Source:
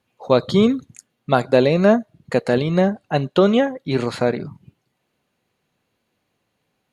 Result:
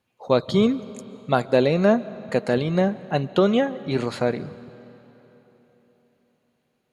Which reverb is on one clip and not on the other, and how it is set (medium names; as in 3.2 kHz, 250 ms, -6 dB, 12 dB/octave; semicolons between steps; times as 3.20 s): algorithmic reverb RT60 3.9 s, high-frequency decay 0.8×, pre-delay 100 ms, DRR 17.5 dB; trim -3.5 dB